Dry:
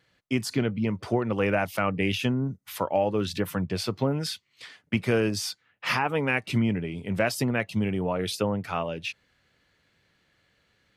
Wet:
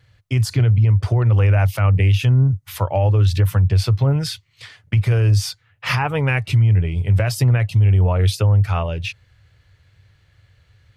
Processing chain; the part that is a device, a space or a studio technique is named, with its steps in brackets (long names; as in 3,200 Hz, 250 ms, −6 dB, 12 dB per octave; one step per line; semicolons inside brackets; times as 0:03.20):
car stereo with a boomy subwoofer (low shelf with overshoot 150 Hz +13 dB, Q 3; brickwall limiter −14 dBFS, peak gain reduction 10.5 dB)
level +5 dB